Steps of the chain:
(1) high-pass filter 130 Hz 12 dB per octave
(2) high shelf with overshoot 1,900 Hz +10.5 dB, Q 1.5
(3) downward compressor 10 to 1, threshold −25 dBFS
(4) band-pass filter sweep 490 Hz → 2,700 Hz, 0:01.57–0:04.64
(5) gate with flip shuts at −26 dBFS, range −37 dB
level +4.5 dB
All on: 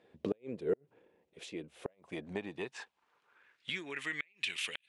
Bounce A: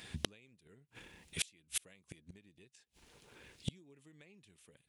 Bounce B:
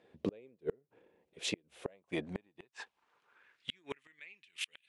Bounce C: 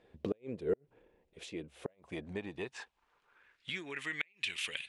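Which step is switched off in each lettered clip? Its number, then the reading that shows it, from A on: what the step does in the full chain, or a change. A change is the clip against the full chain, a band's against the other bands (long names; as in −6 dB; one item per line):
4, 8 kHz band +16.0 dB
3, average gain reduction 7.5 dB
1, 125 Hz band +2.0 dB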